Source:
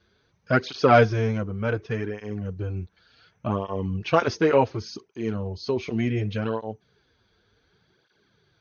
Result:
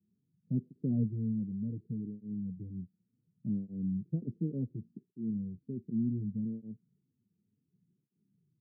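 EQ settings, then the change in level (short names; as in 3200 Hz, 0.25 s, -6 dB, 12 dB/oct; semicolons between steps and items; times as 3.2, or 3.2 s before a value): HPF 150 Hz 24 dB/oct; inverse Chebyshev low-pass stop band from 980 Hz, stop band 70 dB; 0.0 dB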